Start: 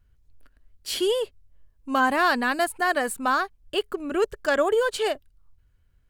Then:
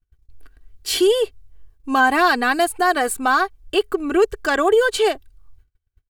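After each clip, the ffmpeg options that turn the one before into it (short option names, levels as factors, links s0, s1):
-filter_complex "[0:a]agate=range=0.0398:threshold=0.00141:ratio=16:detection=peak,aecho=1:1:2.6:0.6,asplit=2[s0][s1];[s1]alimiter=limit=0.133:level=0:latency=1:release=145,volume=1.12[s2];[s0][s2]amix=inputs=2:normalize=0"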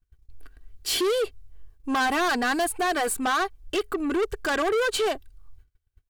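-af "asoftclip=type=tanh:threshold=0.0891"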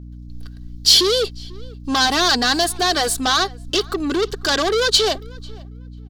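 -filter_complex "[0:a]acrossover=split=520|5800[s0][s1][s2];[s1]aexciter=amount=8.3:drive=4.6:freq=3600[s3];[s0][s3][s2]amix=inputs=3:normalize=0,asplit=2[s4][s5];[s5]adelay=494,lowpass=f=3200:p=1,volume=0.0668,asplit=2[s6][s7];[s7]adelay=494,lowpass=f=3200:p=1,volume=0.18[s8];[s4][s6][s8]amix=inputs=3:normalize=0,aeval=exprs='val(0)+0.0112*(sin(2*PI*60*n/s)+sin(2*PI*2*60*n/s)/2+sin(2*PI*3*60*n/s)/3+sin(2*PI*4*60*n/s)/4+sin(2*PI*5*60*n/s)/5)':c=same,volume=1.68"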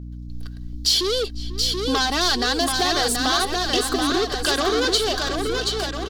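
-filter_complex "[0:a]acompressor=threshold=0.0562:ratio=2,asplit=2[s0][s1];[s1]aecho=0:1:730|1350|1878|2326|2707:0.631|0.398|0.251|0.158|0.1[s2];[s0][s2]amix=inputs=2:normalize=0,volume=1.19"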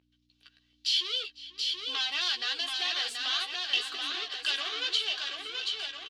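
-filter_complex "[0:a]bandpass=f=2800:t=q:w=3.5:csg=0,asplit=2[s0][s1];[s1]adelay=14,volume=0.501[s2];[s0][s2]amix=inputs=2:normalize=0"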